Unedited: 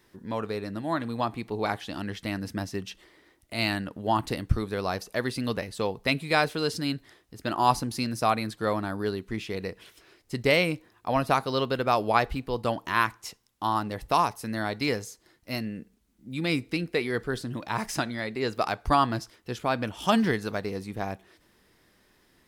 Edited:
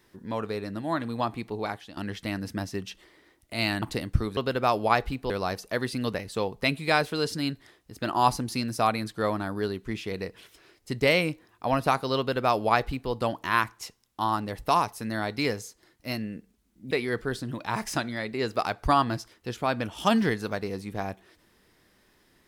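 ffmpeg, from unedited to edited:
-filter_complex "[0:a]asplit=6[s0][s1][s2][s3][s4][s5];[s0]atrim=end=1.97,asetpts=PTS-STARTPTS,afade=t=out:st=1.42:d=0.55:silence=0.251189[s6];[s1]atrim=start=1.97:end=3.822,asetpts=PTS-STARTPTS,afade=t=in:d=0.004:c=hsin:silence=0.251189[s7];[s2]atrim=start=4.178:end=4.732[s8];[s3]atrim=start=11.608:end=12.542[s9];[s4]atrim=start=4.728:end=16.342[s10];[s5]atrim=start=16.928[s11];[s6][s7]concat=n=2:v=0:a=1[s12];[s12][s8]acrossfade=d=0.004:c1=hsin:c2=hsin[s13];[s13][s9]acrossfade=d=0.004:c1=hsin:c2=hsin[s14];[s14][s10]acrossfade=d=0.004:c1=hsin:c2=hsin[s15];[s15][s11]acrossfade=d=0.004:c1=hsin:c2=hsin"

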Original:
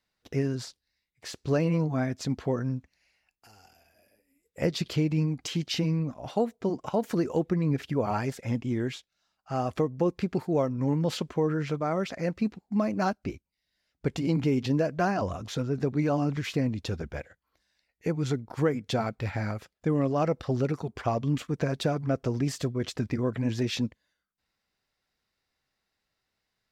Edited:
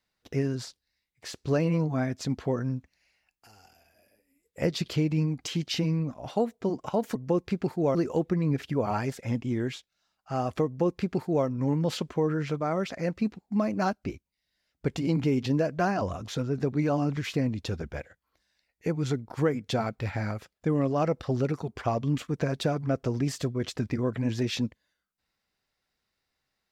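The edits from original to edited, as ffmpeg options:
-filter_complex "[0:a]asplit=3[s0][s1][s2];[s0]atrim=end=7.152[s3];[s1]atrim=start=9.858:end=10.662[s4];[s2]atrim=start=7.148[s5];[s3][s4]acrossfade=d=0.004:c1=hsin:c2=hsin[s6];[s6][s5]acrossfade=d=0.004:c1=hsin:c2=hsin"

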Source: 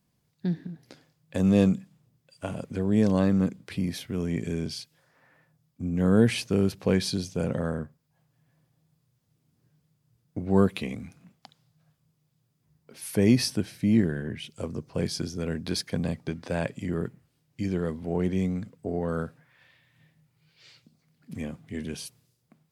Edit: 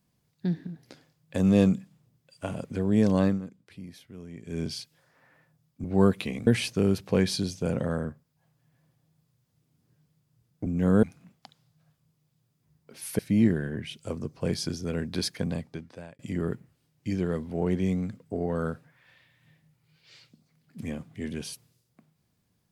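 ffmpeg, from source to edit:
-filter_complex "[0:a]asplit=9[s0][s1][s2][s3][s4][s5][s6][s7][s8];[s0]atrim=end=3.41,asetpts=PTS-STARTPTS,afade=t=out:st=3.27:d=0.14:silence=0.199526[s9];[s1]atrim=start=3.41:end=4.46,asetpts=PTS-STARTPTS,volume=0.2[s10];[s2]atrim=start=4.46:end=5.842,asetpts=PTS-STARTPTS,afade=t=in:d=0.14:silence=0.199526[s11];[s3]atrim=start=10.398:end=11.032[s12];[s4]atrim=start=6.208:end=10.402[s13];[s5]atrim=start=5.838:end=6.212[s14];[s6]atrim=start=11.028:end=13.192[s15];[s7]atrim=start=13.718:end=16.72,asetpts=PTS-STARTPTS,afade=t=out:st=2.142:d=0.86[s16];[s8]atrim=start=16.72,asetpts=PTS-STARTPTS,afade=t=in:d=0.004:c=hsin[s17];[s9][s10][s11]concat=n=3:v=0:a=1[s18];[s18][s12]acrossfade=d=0.004:c1=hsin:c2=hsin[s19];[s19][s13]acrossfade=d=0.004:c1=hsin:c2=hsin[s20];[s20][s14]acrossfade=d=0.004:c1=hsin:c2=hsin[s21];[s21][s15]acrossfade=d=0.004:c1=hsin:c2=hsin[s22];[s16][s17]concat=n=2:v=0:a=1[s23];[s22][s23]acrossfade=d=0.004:c1=hsin:c2=hsin"

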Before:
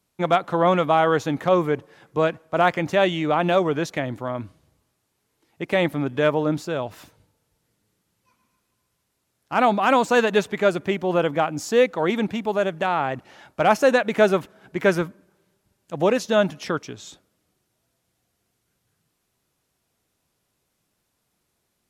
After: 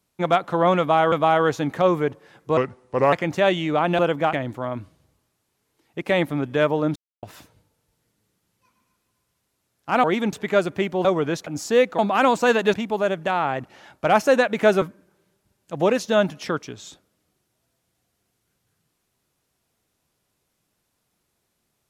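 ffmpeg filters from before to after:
-filter_complex "[0:a]asplit=15[s0][s1][s2][s3][s4][s5][s6][s7][s8][s9][s10][s11][s12][s13][s14];[s0]atrim=end=1.122[s15];[s1]atrim=start=0.788:end=2.244[s16];[s2]atrim=start=2.24:end=2.68,asetpts=PTS-STARTPTS,asetrate=34839,aresample=44100,atrim=end_sample=24562,asetpts=PTS-STARTPTS[s17];[s3]atrim=start=2.676:end=3.542[s18];[s4]atrim=start=11.138:end=11.482[s19];[s5]atrim=start=3.958:end=6.59,asetpts=PTS-STARTPTS,afade=t=out:st=2.628:d=0.004:c=hsin[s20];[s6]atrim=start=6.59:end=6.86,asetpts=PTS-STARTPTS,volume=0[s21];[s7]atrim=start=6.86:end=9.672,asetpts=PTS-STARTPTS,afade=t=in:d=0.004:c=hsin[s22];[s8]atrim=start=11.998:end=12.292[s23];[s9]atrim=start=10.418:end=11.142[s24];[s10]atrim=start=3.538:end=3.962[s25];[s11]atrim=start=11.478:end=12.002[s26];[s12]atrim=start=9.668:end=10.422[s27];[s13]atrim=start=12.288:end=14.372[s28];[s14]atrim=start=15.018[s29];[s15][s16]acrossfade=d=0.004:c1=hsin:c2=hsin[s30];[s30][s17]acrossfade=d=0.004:c1=hsin:c2=hsin[s31];[s31][s18]acrossfade=d=0.004:c1=hsin:c2=hsin[s32];[s32][s19]acrossfade=d=0.004:c1=hsin:c2=hsin[s33];[s20][s21][s22]concat=n=3:v=0:a=1[s34];[s33][s34]acrossfade=d=0.004:c1=hsin:c2=hsin[s35];[s35][s23]acrossfade=d=0.004:c1=hsin:c2=hsin[s36];[s36][s24]acrossfade=d=0.004:c1=hsin:c2=hsin[s37];[s37][s25]acrossfade=d=0.004:c1=hsin:c2=hsin[s38];[s38][s26]acrossfade=d=0.004:c1=hsin:c2=hsin[s39];[s39][s27]acrossfade=d=0.004:c1=hsin:c2=hsin[s40];[s40][s28]acrossfade=d=0.004:c1=hsin:c2=hsin[s41];[s41][s29]acrossfade=d=0.004:c1=hsin:c2=hsin"

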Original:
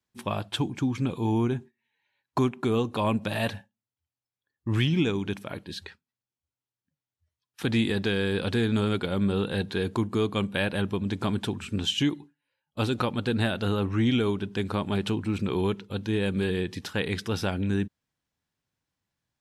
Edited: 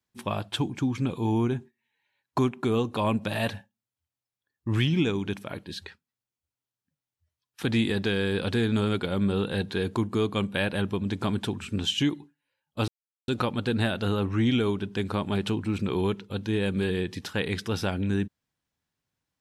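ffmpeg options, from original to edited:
-filter_complex "[0:a]asplit=2[s0][s1];[s0]atrim=end=12.88,asetpts=PTS-STARTPTS,afade=t=out:st=12.876:d=0.004:c=hsin,apad=pad_dur=0.4[s2];[s1]atrim=start=12.88,asetpts=PTS-STARTPTS,afade=t=in:d=0.004:c=hsin[s3];[s2][s3]concat=n=2:v=0:a=1"

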